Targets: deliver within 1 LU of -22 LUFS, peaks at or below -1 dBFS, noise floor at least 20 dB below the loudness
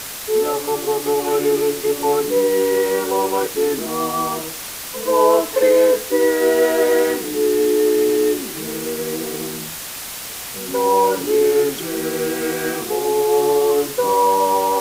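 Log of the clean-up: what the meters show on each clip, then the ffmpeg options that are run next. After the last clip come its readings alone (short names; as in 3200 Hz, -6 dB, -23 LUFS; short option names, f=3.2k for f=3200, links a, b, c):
noise floor -31 dBFS; noise floor target -39 dBFS; loudness -18.5 LUFS; peak -3.0 dBFS; loudness target -22.0 LUFS
-> -af "afftdn=nr=8:nf=-31"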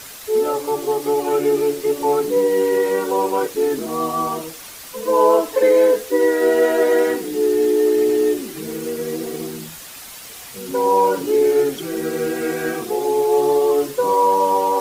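noise floor -37 dBFS; noise floor target -39 dBFS
-> -af "afftdn=nr=6:nf=-37"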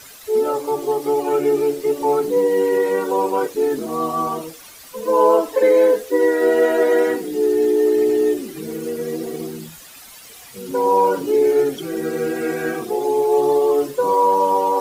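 noise floor -41 dBFS; loudness -18.5 LUFS; peak -3.5 dBFS; loudness target -22.0 LUFS
-> -af "volume=-3.5dB"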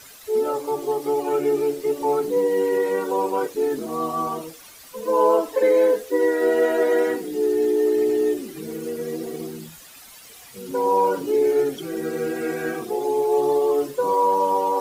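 loudness -22.0 LUFS; peak -7.0 dBFS; noise floor -45 dBFS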